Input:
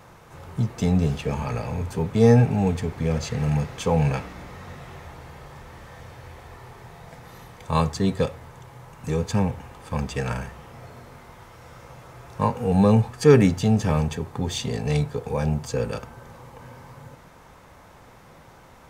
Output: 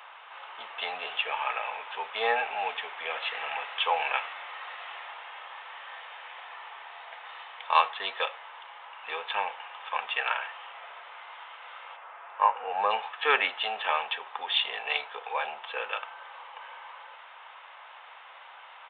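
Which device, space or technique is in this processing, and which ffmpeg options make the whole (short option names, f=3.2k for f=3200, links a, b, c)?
musical greeting card: -filter_complex "[0:a]aresample=8000,aresample=44100,highpass=f=790:w=0.5412,highpass=f=790:w=1.3066,equalizer=f=2.9k:t=o:w=0.44:g=7,asplit=3[a][b][c];[a]afade=t=out:st=11.96:d=0.02[d];[b]lowpass=1.9k,afade=t=in:st=11.96:d=0.02,afade=t=out:st=12.89:d=0.02[e];[c]afade=t=in:st=12.89:d=0.02[f];[d][e][f]amix=inputs=3:normalize=0,volume=4.5dB"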